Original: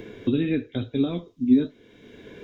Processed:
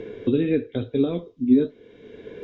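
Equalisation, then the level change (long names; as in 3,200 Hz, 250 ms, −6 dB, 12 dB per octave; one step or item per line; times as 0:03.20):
high-frequency loss of the air 110 metres
parametric band 460 Hz +9 dB 0.52 octaves
0.0 dB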